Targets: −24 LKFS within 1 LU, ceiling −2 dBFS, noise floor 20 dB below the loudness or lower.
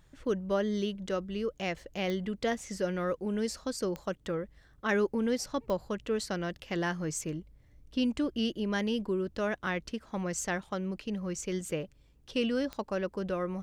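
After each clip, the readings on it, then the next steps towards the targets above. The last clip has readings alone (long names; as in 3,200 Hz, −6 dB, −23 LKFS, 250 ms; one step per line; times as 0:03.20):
number of clicks 4; integrated loudness −33.5 LKFS; sample peak −16.5 dBFS; target loudness −24.0 LKFS
→ click removal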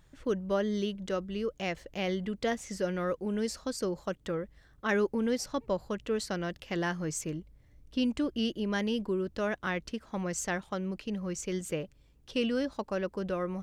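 number of clicks 0; integrated loudness −33.5 LKFS; sample peak −16.5 dBFS; target loudness −24.0 LKFS
→ level +9.5 dB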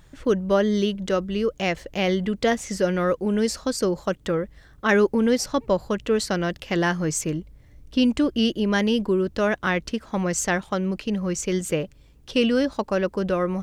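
integrated loudness −24.0 LKFS; sample peak −7.0 dBFS; background noise floor −52 dBFS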